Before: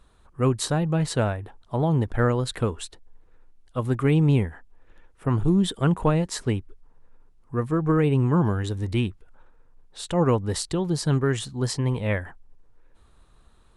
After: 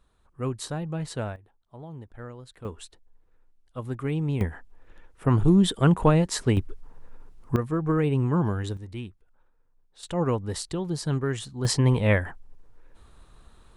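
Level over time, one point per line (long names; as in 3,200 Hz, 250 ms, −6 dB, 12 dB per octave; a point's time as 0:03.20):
−8 dB
from 0:01.36 −19 dB
from 0:02.65 −8 dB
from 0:04.41 +2 dB
from 0:06.57 +9 dB
from 0:07.56 −3 dB
from 0:08.77 −12 dB
from 0:10.03 −4.5 dB
from 0:11.65 +4 dB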